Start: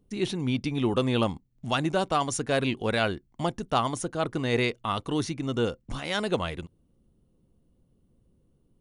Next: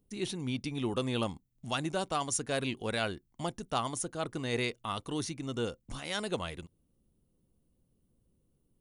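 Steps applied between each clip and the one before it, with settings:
high-shelf EQ 6,100 Hz +12 dB
level −7.5 dB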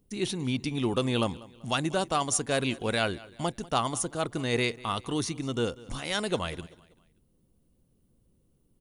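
repeating echo 193 ms, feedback 40%, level −20.5 dB
level +5 dB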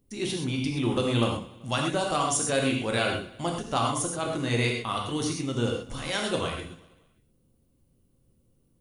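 reverb whose tail is shaped and stops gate 150 ms flat, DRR −0.5 dB
level −1.5 dB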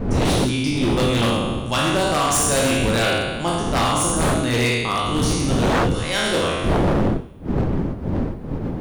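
peak hold with a decay on every bin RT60 1.36 s
wind on the microphone 240 Hz −24 dBFS
wave folding −17.5 dBFS
level +5 dB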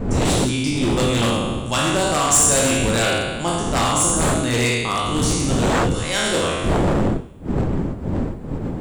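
parametric band 7,600 Hz +12 dB 0.29 octaves

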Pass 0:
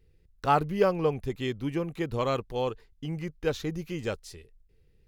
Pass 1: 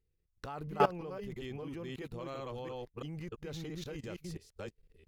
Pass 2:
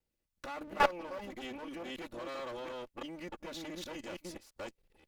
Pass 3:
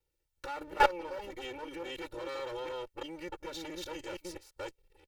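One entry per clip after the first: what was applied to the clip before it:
delay that plays each chunk backwards 336 ms, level −0.5 dB; output level in coarse steps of 19 dB; level −3.5 dB
lower of the sound and its delayed copy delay 3.5 ms; low-shelf EQ 240 Hz −10 dB; level +3 dB
comb filter 2.2 ms, depth 100%; level −1 dB

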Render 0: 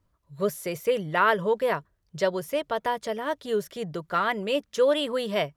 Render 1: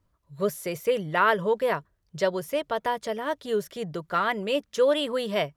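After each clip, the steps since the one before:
no processing that can be heard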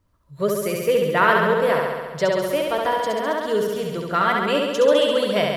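flutter between parallel walls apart 11.7 metres, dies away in 1.4 s
level +3.5 dB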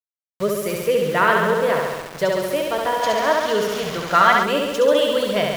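centre clipping without the shift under −30 dBFS
gain on a spectral selection 0:03.03–0:04.43, 520–7,100 Hz +6 dB

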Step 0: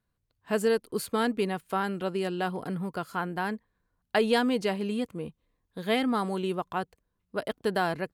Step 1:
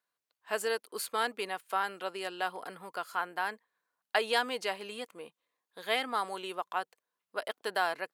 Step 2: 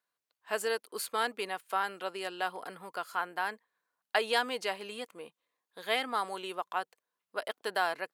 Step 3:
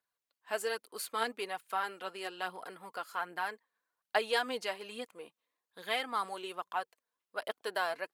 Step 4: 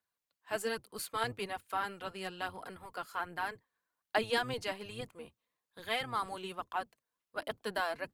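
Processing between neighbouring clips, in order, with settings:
high-pass filter 690 Hz 12 dB per octave
no processing that can be heard
phase shifter 1.2 Hz, delay 4.7 ms, feedback 41%; level −3.5 dB
sub-octave generator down 1 octave, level +1 dB; level −1 dB

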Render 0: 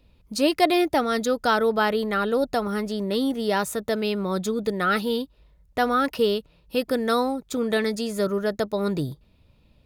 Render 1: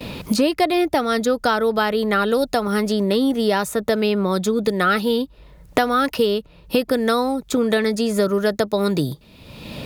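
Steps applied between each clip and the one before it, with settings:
noise gate with hold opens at −55 dBFS
multiband upward and downward compressor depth 100%
level +3.5 dB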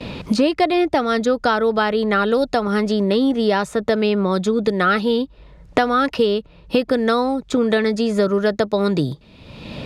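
high-frequency loss of the air 79 metres
level +1.5 dB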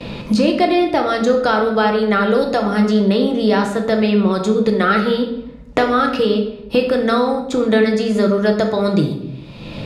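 rectangular room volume 260 cubic metres, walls mixed, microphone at 0.77 metres

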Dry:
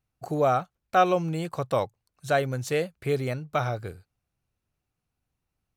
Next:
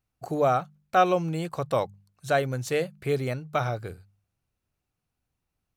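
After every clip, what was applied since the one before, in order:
hum removal 49.84 Hz, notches 4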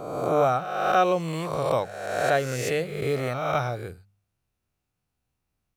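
peak hold with a rise ahead of every peak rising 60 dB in 1.26 s
level −1.5 dB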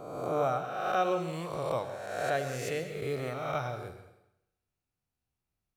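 convolution reverb RT60 0.90 s, pre-delay 97 ms, DRR 9 dB
level −8 dB

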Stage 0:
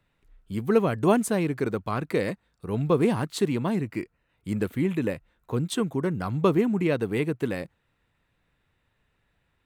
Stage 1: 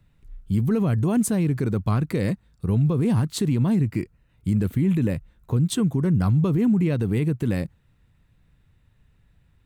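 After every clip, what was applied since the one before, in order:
bass and treble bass +15 dB, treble +5 dB
brickwall limiter −14 dBFS, peak gain reduction 10.5 dB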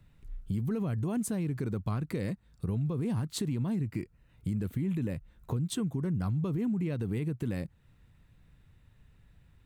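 downward compressor 2.5 to 1, threshold −34 dBFS, peak gain reduction 11.5 dB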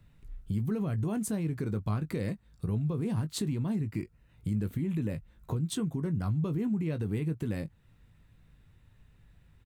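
double-tracking delay 19 ms −10.5 dB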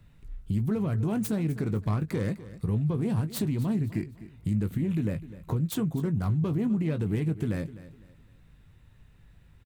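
phase distortion by the signal itself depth 0.11 ms
repeating echo 253 ms, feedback 32%, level −16 dB
level +3.5 dB

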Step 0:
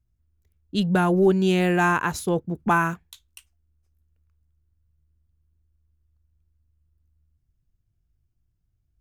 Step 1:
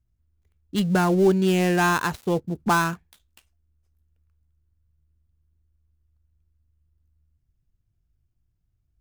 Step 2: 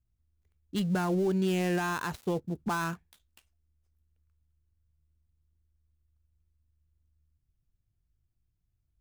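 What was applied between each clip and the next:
gap after every zero crossing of 0.09 ms
brickwall limiter −16 dBFS, peak gain reduction 6.5 dB; level −5.5 dB

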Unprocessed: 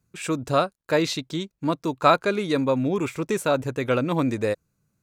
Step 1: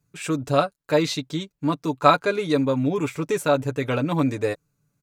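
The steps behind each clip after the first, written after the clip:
comb filter 6.9 ms, depth 60%
level −1 dB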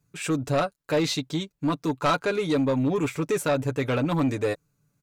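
in parallel at −2.5 dB: brickwall limiter −13.5 dBFS, peak gain reduction 11 dB
on the sum: soft clipping −13 dBFS, distortion −13 dB
level −4 dB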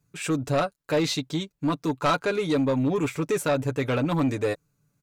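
no processing that can be heard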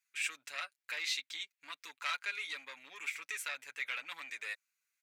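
downward compressor 1.5 to 1, threshold −29 dBFS, peak gain reduction 3.5 dB
high-pass with resonance 2,100 Hz, resonance Q 2.7
level −6.5 dB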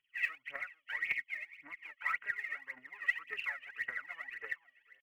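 hearing-aid frequency compression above 1,800 Hz 4 to 1
slap from a distant wall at 76 metres, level −18 dB
phase shifter 1.8 Hz, delay 1.8 ms, feedback 79%
level −4.5 dB

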